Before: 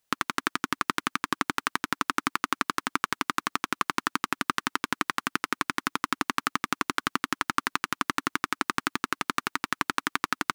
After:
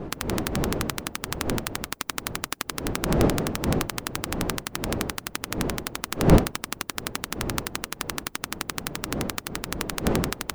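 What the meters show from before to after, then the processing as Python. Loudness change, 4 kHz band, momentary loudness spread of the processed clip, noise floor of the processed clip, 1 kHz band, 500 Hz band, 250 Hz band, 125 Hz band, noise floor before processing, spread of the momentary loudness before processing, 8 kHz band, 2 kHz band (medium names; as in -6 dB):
+1.5 dB, +1.0 dB, 9 LU, -48 dBFS, -5.0 dB, +11.5 dB, +6.5 dB, +17.0 dB, -77 dBFS, 2 LU, +5.0 dB, -4.5 dB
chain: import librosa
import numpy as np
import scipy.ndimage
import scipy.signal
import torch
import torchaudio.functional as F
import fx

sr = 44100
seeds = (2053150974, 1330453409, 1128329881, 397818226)

y = fx.spec_flatten(x, sr, power=0.43)
y = fx.dmg_wind(y, sr, seeds[0], corner_hz=360.0, level_db=-25.0)
y = F.gain(torch.from_numpy(y), -3.5).numpy()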